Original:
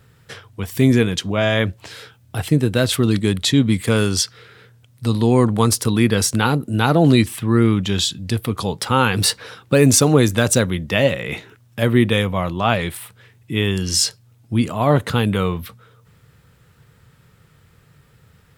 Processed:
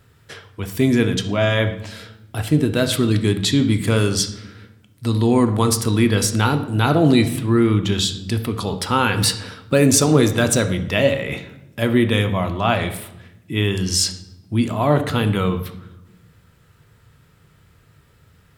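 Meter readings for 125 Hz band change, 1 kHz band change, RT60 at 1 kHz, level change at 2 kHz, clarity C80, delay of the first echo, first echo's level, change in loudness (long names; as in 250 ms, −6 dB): −1.0 dB, −0.5 dB, 0.80 s, −1.0 dB, 14.0 dB, no echo audible, no echo audible, −1.0 dB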